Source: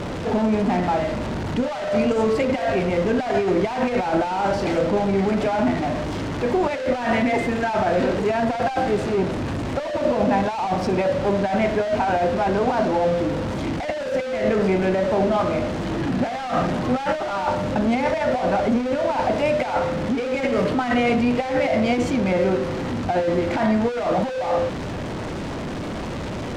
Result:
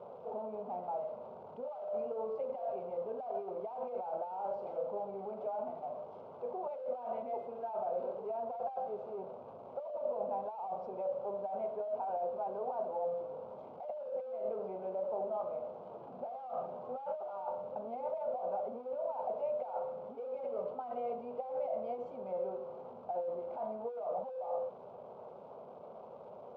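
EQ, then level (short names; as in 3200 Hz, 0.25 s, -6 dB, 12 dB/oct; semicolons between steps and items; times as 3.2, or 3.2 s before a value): ladder band-pass 540 Hz, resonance 25%; fixed phaser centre 750 Hz, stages 4; -3.0 dB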